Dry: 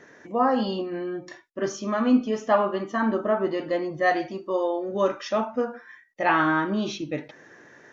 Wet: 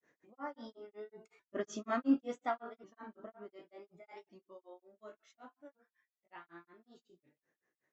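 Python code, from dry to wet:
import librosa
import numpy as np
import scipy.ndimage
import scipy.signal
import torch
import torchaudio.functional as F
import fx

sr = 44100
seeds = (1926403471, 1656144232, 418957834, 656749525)

y = fx.pitch_ramps(x, sr, semitones=3.5, every_ms=1424)
y = fx.doppler_pass(y, sr, speed_mps=9, closest_m=2.5, pass_at_s=1.77)
y = fx.granulator(y, sr, seeds[0], grain_ms=176.0, per_s=5.4, spray_ms=12.0, spread_st=0)
y = y * librosa.db_to_amplitude(-4.0)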